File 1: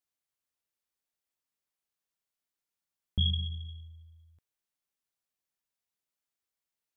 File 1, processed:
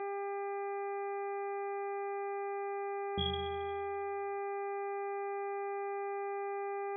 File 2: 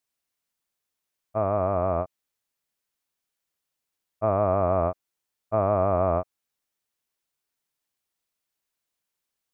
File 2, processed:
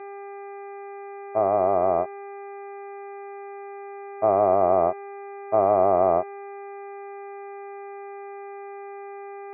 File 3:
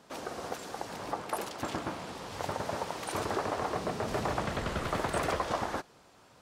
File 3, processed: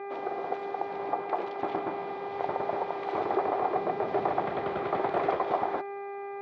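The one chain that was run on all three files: buzz 400 Hz, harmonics 6, -43 dBFS -3 dB/oct; speaker cabinet 180–3200 Hz, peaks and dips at 230 Hz -5 dB, 380 Hz +8 dB, 750 Hz +9 dB, 1600 Hz -5 dB, 2800 Hz -7 dB

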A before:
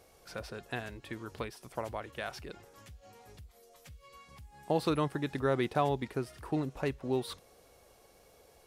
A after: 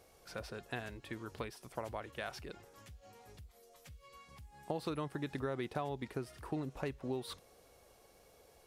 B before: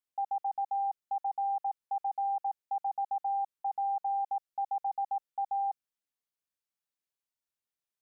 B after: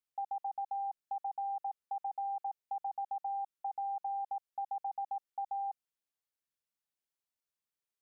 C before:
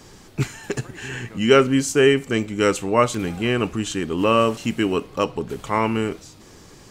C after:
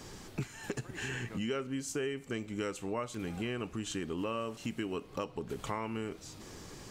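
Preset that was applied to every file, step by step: compressor 6:1, threshold -32 dBFS; gain -2.5 dB

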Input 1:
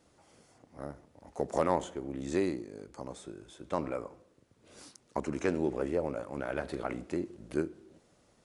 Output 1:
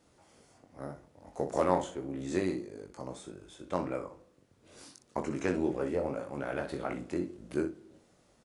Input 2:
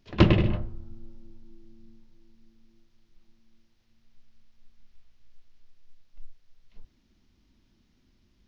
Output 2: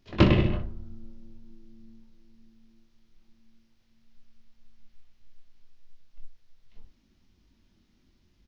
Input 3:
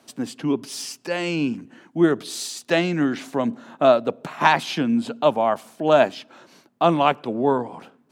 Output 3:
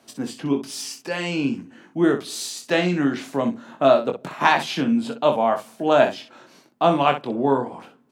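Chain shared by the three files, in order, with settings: early reflections 22 ms -6 dB, 62 ms -10 dB; gain -1 dB

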